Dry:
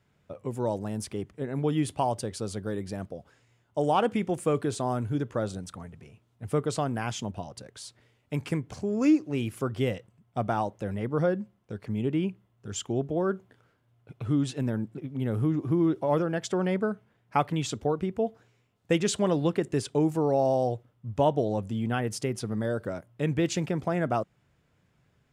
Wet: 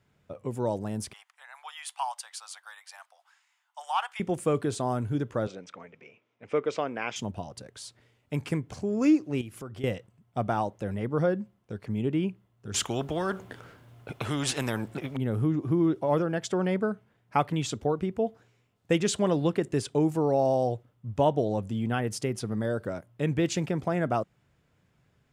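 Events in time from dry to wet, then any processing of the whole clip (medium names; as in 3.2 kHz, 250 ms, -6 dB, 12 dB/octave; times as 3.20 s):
1.13–4.20 s: steep high-pass 820 Hz 48 dB/octave
5.47–7.16 s: cabinet simulation 320–5500 Hz, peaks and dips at 500 Hz +5 dB, 770 Hz -3 dB, 2.3 kHz +10 dB, 4.3 kHz -8 dB
9.41–9.84 s: compression 2.5:1, threshold -41 dBFS
12.74–15.17 s: spectrum-flattening compressor 2:1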